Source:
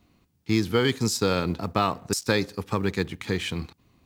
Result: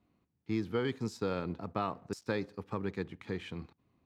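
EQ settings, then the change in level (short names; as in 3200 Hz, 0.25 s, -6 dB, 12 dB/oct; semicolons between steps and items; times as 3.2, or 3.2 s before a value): low shelf 61 Hz -11.5 dB; high shelf 2600 Hz -9.5 dB; high shelf 5800 Hz -9 dB; -9.0 dB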